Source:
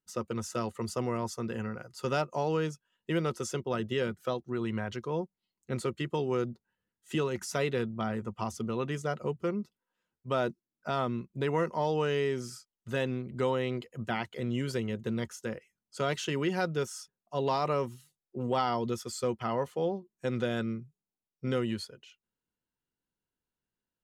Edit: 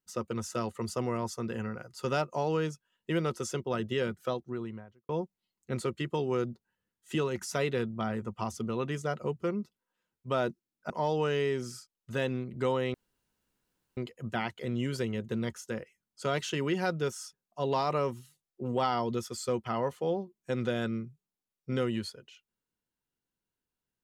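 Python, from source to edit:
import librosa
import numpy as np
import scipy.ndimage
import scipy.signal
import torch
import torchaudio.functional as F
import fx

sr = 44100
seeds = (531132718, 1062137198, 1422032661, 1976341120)

y = fx.studio_fade_out(x, sr, start_s=4.26, length_s=0.83)
y = fx.edit(y, sr, fx.cut(start_s=10.9, length_s=0.78),
    fx.insert_room_tone(at_s=13.72, length_s=1.03), tone=tone)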